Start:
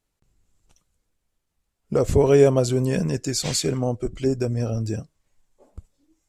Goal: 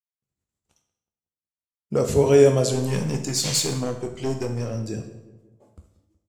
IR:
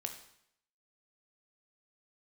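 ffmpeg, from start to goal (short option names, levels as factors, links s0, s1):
-filter_complex "[0:a]agate=range=0.0224:threshold=0.002:ratio=3:detection=peak,highpass=88,asettb=1/sr,asplit=3[s0][s1][s2];[s0]atrim=end=2.714[s3];[s1]atrim=start=2.71:end=4.89,asetpts=PTS-STARTPTS,afade=t=in:d=0.004:c=qsin,afade=t=out:st=2.176:d=0.004:c=qsin,aeval=exprs='clip(val(0),-1,0.0944)':c=same[s4];[s2]atrim=start=4.886[s5];[s3][s4]acrossfade=d=0.004:c1=hsin:c2=qsin[s6];[s6][s5]acrossfade=d=0.004:c1=qsin:c2=hsin,asplit=2[s7][s8];[s8]adelay=184,lowpass=f=1300:p=1,volume=0.168,asplit=2[s9][s10];[s10]adelay=184,lowpass=f=1300:p=1,volume=0.51,asplit=2[s11][s12];[s12]adelay=184,lowpass=f=1300:p=1,volume=0.51,asplit=2[s13][s14];[s14]adelay=184,lowpass=f=1300:p=1,volume=0.51,asplit=2[s15][s16];[s16]adelay=184,lowpass=f=1300:p=1,volume=0.51[s17];[s7][s9][s11][s13][s15][s17]amix=inputs=6:normalize=0[s18];[1:a]atrim=start_sample=2205[s19];[s18][s19]afir=irnorm=-1:irlink=0,adynamicequalizer=threshold=0.0141:dfrequency=2200:dqfactor=0.7:tfrequency=2200:tqfactor=0.7:attack=5:release=100:ratio=0.375:range=2.5:mode=boostabove:tftype=highshelf"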